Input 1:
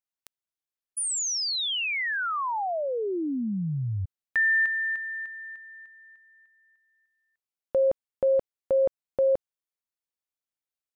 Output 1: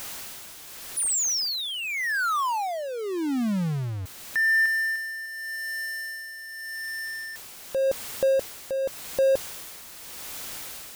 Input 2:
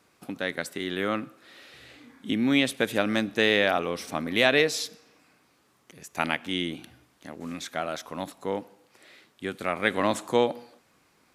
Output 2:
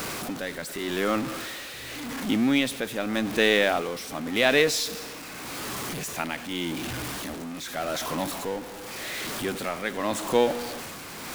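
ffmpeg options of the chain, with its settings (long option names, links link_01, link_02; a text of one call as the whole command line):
ffmpeg -i in.wav -af "aeval=exprs='val(0)+0.5*0.0447*sgn(val(0))':channel_layout=same,tremolo=f=0.86:d=0.57" out.wav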